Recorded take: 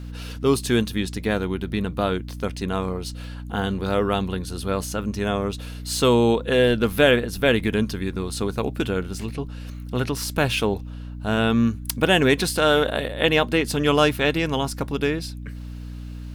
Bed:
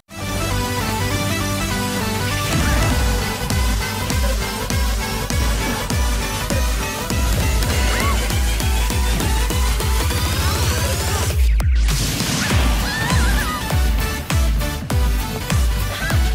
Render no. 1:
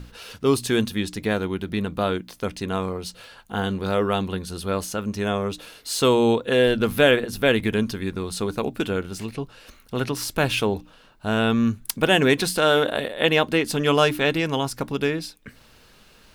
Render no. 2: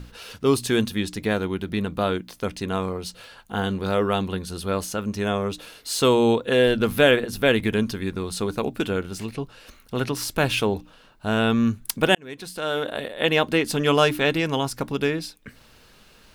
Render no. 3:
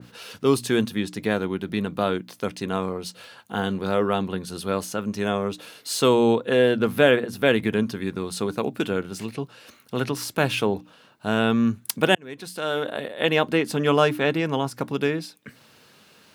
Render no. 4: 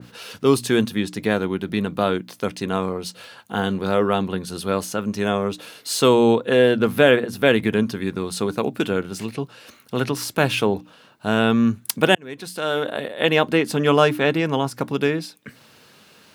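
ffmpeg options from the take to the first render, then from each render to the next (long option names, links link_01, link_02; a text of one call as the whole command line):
ffmpeg -i in.wav -af "bandreject=frequency=60:width_type=h:width=6,bandreject=frequency=120:width_type=h:width=6,bandreject=frequency=180:width_type=h:width=6,bandreject=frequency=240:width_type=h:width=6,bandreject=frequency=300:width_type=h:width=6" out.wav
ffmpeg -i in.wav -filter_complex "[0:a]asplit=2[link_01][link_02];[link_01]atrim=end=12.15,asetpts=PTS-STARTPTS,afade=type=out:start_time=12.146:duration=0.004:curve=hsin[link_03];[link_02]atrim=start=12.15,asetpts=PTS-STARTPTS,afade=type=in:duration=1.36[link_04];[link_03][link_04]concat=n=2:v=0:a=1" out.wav
ffmpeg -i in.wav -af "highpass=frequency=110:width=0.5412,highpass=frequency=110:width=1.3066,adynamicequalizer=threshold=0.0126:dfrequency=2300:dqfactor=0.7:tfrequency=2300:tqfactor=0.7:attack=5:release=100:ratio=0.375:range=3.5:mode=cutabove:tftype=highshelf" out.wav
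ffmpeg -i in.wav -af "volume=3dB,alimiter=limit=-1dB:level=0:latency=1" out.wav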